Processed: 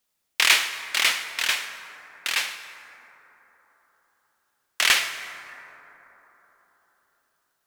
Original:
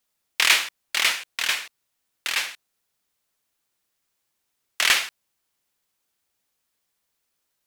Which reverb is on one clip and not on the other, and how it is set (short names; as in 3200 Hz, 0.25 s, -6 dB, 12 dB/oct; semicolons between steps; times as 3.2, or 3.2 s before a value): plate-style reverb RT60 4.1 s, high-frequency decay 0.3×, pre-delay 90 ms, DRR 10 dB